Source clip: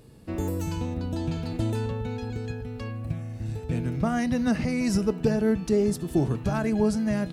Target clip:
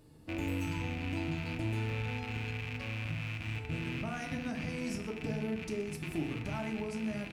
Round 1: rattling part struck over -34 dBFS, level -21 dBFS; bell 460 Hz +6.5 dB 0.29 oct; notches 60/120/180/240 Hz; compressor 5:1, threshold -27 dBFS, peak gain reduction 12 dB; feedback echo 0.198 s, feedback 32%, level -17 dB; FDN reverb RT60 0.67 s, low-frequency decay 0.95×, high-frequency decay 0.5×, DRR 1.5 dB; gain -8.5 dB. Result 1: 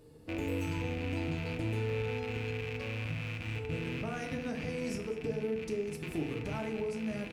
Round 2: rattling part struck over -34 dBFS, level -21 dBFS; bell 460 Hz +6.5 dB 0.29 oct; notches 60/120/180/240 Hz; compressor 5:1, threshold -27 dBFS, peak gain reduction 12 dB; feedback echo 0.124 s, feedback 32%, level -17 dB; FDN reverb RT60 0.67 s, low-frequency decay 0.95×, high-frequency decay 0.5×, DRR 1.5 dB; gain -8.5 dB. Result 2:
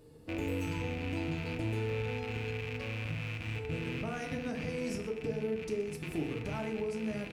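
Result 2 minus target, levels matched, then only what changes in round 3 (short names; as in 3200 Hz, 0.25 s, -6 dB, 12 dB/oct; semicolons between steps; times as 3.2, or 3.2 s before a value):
500 Hz band +4.5 dB
change: bell 460 Hz -5.5 dB 0.29 oct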